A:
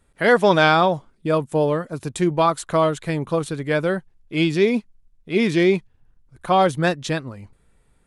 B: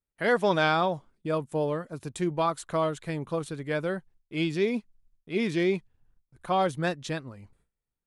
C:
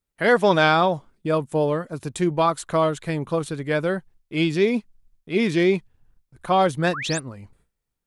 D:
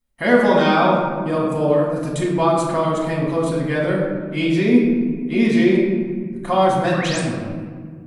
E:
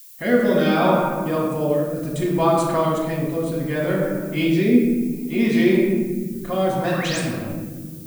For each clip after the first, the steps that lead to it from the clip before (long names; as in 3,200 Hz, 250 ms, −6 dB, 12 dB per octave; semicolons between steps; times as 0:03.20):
noise gate with hold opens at −47 dBFS; level −8.5 dB
sound drawn into the spectrogram rise, 0:06.93–0:07.20, 980–9,900 Hz −37 dBFS; level +6.5 dB
in parallel at 0 dB: downward compressor, threshold −27 dBFS, peak gain reduction 13.5 dB; on the sum: hollow resonant body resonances 230/580 Hz, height 6 dB; convolution reverb RT60 1.9 s, pre-delay 4 ms, DRR −5 dB; level −8 dB
rotating-speaker cabinet horn 0.65 Hz; background noise violet −44 dBFS